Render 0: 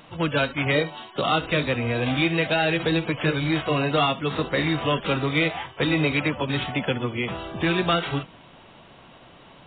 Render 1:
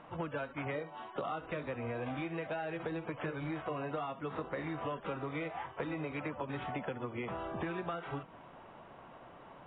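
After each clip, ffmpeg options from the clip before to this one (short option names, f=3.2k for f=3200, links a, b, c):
-af "lowpass=1.2k,lowshelf=f=490:g=-10.5,acompressor=threshold=-37dB:ratio=10,volume=2dB"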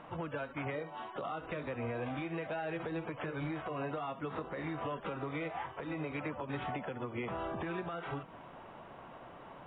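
-af "alimiter=level_in=7.5dB:limit=-24dB:level=0:latency=1:release=150,volume=-7.5dB,volume=2.5dB"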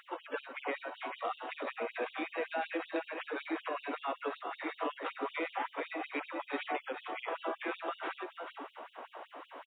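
-af "aecho=1:1:441:0.501,afftfilt=real='re*gte(b*sr/1024,230*pow(2900/230,0.5+0.5*sin(2*PI*5.3*pts/sr)))':imag='im*gte(b*sr/1024,230*pow(2900/230,0.5+0.5*sin(2*PI*5.3*pts/sr)))':win_size=1024:overlap=0.75,volume=4.5dB"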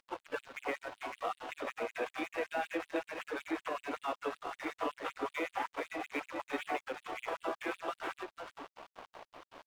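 -af "aeval=exprs='sgn(val(0))*max(abs(val(0))-0.00335,0)':c=same,volume=1dB"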